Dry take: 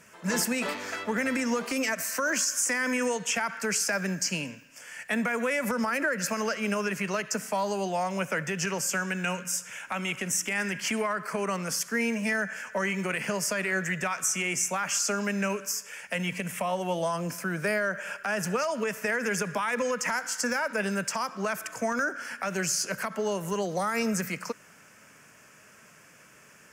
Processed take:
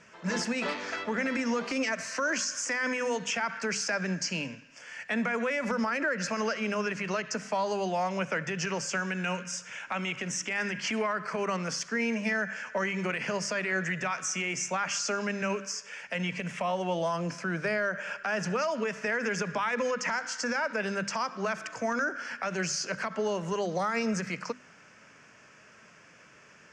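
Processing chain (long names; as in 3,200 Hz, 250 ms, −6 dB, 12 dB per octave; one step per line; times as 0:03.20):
low-pass filter 6,000 Hz 24 dB per octave
brickwall limiter −21 dBFS, peak gain reduction 3.5 dB
mains-hum notches 50/100/150/200/250 Hz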